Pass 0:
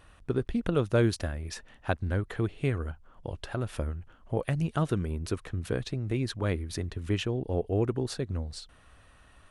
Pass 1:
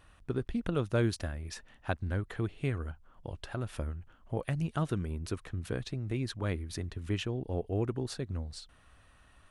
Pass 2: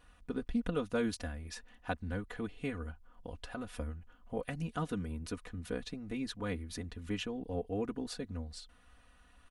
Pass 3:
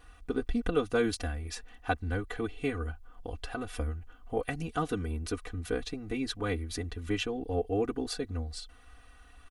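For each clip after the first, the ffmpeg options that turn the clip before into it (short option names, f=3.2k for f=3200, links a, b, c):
-af "equalizer=f=470:w=1.7:g=-2.5,volume=-3.5dB"
-af "aecho=1:1:4.1:0.87,volume=-4.5dB"
-af "aecho=1:1:2.6:0.55,volume=5dB"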